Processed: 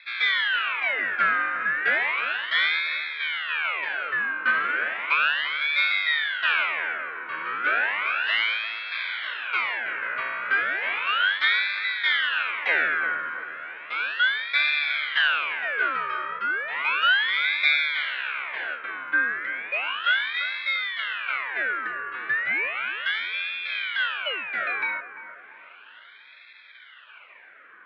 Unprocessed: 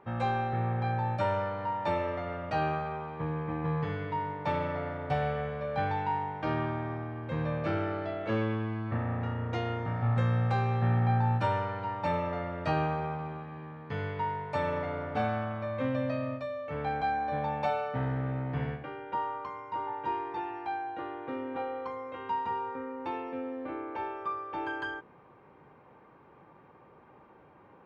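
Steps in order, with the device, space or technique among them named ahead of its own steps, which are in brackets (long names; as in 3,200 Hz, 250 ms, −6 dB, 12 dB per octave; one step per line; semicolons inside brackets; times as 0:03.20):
Butterworth high-pass 290 Hz 48 dB per octave
voice changer toy (ring modulator whose carrier an LFO sweeps 1,800 Hz, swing 65%, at 0.34 Hz; loudspeaker in its box 590–3,800 Hz, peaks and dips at 800 Hz −6 dB, 1,500 Hz +10 dB, 2,300 Hz +7 dB)
bucket-brigade delay 343 ms, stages 4,096, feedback 46%, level −11.5 dB
level +7.5 dB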